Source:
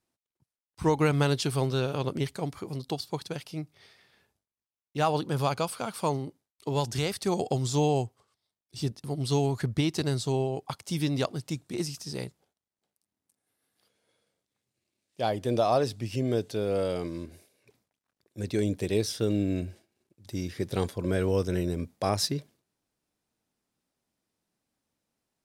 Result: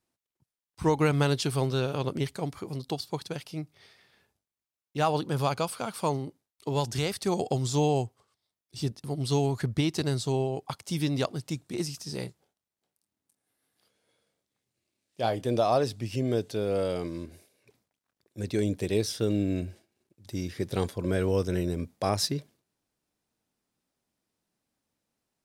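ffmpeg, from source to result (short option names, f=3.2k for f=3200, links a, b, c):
-filter_complex "[0:a]asettb=1/sr,asplit=3[a][b][c];[a]atrim=end=12.064[d];[b]atrim=start=12.06:end=15.46,asetpts=PTS-STARTPTS,afade=t=in:d=0.004:c=qsin,afade=t=out:st=3.396:d=0.004:c=qsin,asplit=2[e][f];[f]adelay=26,volume=-10.5dB[g];[e][g]amix=inputs=2:normalize=0,atrim=end_sample=149940[h];[c]atrim=start=15.456[i];[d][h]acrossfade=d=0.004:c1=hsin:c2=qsin[j];[j][i]acrossfade=d=0.004:c1=qsin:c2=hsin"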